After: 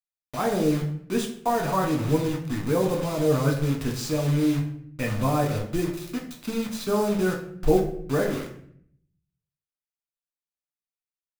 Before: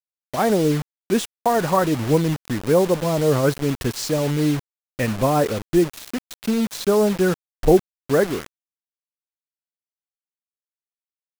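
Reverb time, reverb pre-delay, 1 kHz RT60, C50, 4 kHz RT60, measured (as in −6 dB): 0.60 s, 4 ms, 0.55 s, 7.5 dB, 0.45 s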